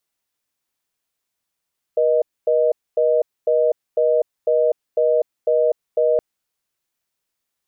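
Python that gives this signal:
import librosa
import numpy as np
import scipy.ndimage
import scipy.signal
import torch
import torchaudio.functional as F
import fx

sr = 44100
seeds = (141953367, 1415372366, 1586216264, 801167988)

y = fx.call_progress(sr, length_s=4.22, kind='reorder tone', level_db=-16.5)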